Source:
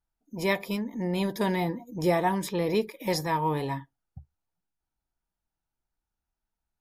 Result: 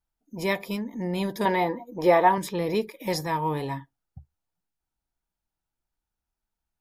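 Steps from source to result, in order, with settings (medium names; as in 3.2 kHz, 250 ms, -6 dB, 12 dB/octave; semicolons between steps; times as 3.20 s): 1.45–2.38 s: ten-band graphic EQ 125 Hz -10 dB, 500 Hz +6 dB, 1 kHz +7 dB, 2 kHz +4 dB, 4 kHz +3 dB, 8 kHz -11 dB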